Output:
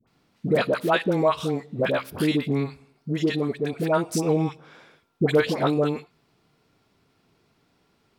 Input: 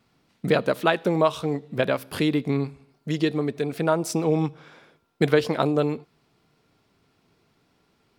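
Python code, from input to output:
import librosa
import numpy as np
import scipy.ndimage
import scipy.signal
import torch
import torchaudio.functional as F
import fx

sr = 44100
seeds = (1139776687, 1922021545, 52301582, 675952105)

y = fx.dispersion(x, sr, late='highs', ms=73.0, hz=890.0)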